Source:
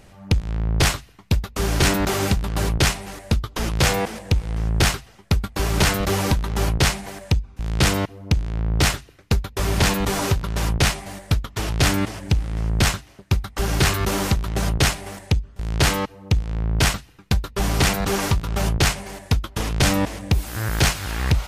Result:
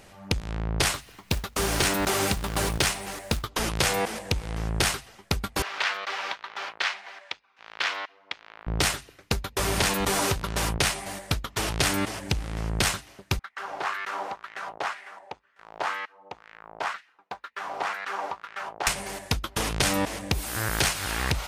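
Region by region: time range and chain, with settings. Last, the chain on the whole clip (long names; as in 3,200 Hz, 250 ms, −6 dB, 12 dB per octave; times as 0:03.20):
0:00.93–0:03.47: upward compression, threshold −38 dBFS + log-companded quantiser 6 bits
0:05.62–0:08.67: high-pass filter 1,200 Hz + high-frequency loss of the air 240 metres + highs frequency-modulated by the lows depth 0.18 ms
0:13.39–0:18.87: low-shelf EQ 160 Hz −11 dB + auto-filter band-pass sine 2 Hz 720–1,900 Hz
whole clip: low-shelf EQ 240 Hz −10 dB; downward compressor, threshold −22 dBFS; dynamic equaliser 9,100 Hz, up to +5 dB, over −50 dBFS, Q 4.5; level +1.5 dB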